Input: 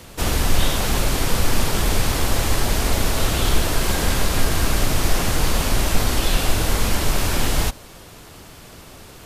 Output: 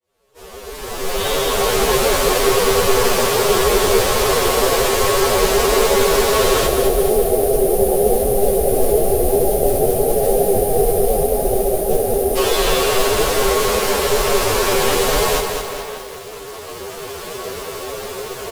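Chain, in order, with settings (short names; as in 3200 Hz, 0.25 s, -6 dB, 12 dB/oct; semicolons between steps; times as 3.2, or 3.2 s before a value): opening faded in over 1.05 s; resonant low shelf 360 Hz -8 dB, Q 3; speakerphone echo 0.29 s, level -12 dB; spectral delete 3.34–6.18, 850–8800 Hz; AGC gain up to 16 dB; bell 260 Hz +7.5 dB 1 oct; modulation noise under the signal 21 dB; small resonant body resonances 390/1100 Hz, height 10 dB, ringing for 70 ms; time stretch by phase-locked vocoder 2×; lo-fi delay 0.21 s, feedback 55%, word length 5-bit, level -5.5 dB; gain -4 dB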